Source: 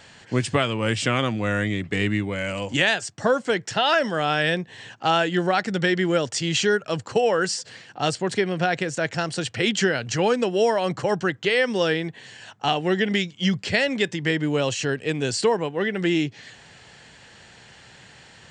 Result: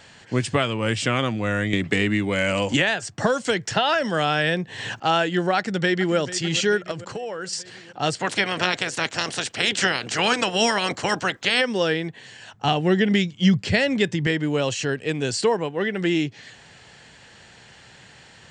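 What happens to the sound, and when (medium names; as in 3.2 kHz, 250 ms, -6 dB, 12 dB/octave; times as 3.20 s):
1.73–5.00 s: three bands compressed up and down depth 100%
5.56–6.16 s: echo throw 440 ms, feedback 60%, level -14 dB
6.91–7.53 s: compression 5:1, threshold -28 dBFS
8.18–11.60 s: spectral peaks clipped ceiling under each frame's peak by 21 dB
12.54–14.27 s: bass shelf 180 Hz +11.5 dB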